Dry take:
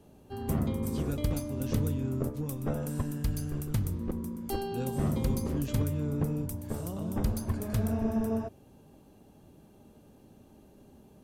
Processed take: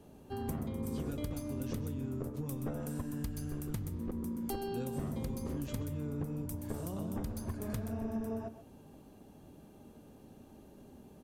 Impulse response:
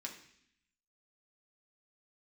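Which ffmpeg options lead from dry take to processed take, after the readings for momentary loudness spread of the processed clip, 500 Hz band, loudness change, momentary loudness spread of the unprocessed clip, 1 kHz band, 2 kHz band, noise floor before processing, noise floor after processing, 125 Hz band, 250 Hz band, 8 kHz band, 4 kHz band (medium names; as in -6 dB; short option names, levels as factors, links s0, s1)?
18 LU, -5.5 dB, -6.5 dB, 6 LU, -5.5 dB, -5.5 dB, -57 dBFS, -57 dBFS, -8.0 dB, -5.5 dB, -5.5 dB, -6.5 dB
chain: -filter_complex "[0:a]acompressor=threshold=0.0178:ratio=6,aecho=1:1:132:0.224,asplit=2[s0][s1];[1:a]atrim=start_sample=2205,lowpass=2400[s2];[s1][s2]afir=irnorm=-1:irlink=0,volume=0.251[s3];[s0][s3]amix=inputs=2:normalize=0"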